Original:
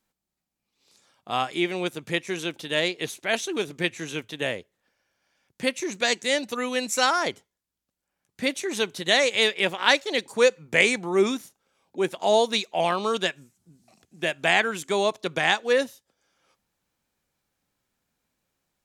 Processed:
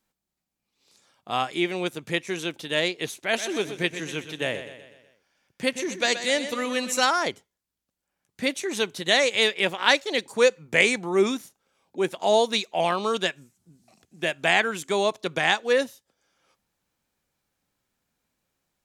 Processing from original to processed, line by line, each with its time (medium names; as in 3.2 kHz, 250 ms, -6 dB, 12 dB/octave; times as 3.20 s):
3.16–7.05 s: feedback delay 124 ms, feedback 50%, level -11 dB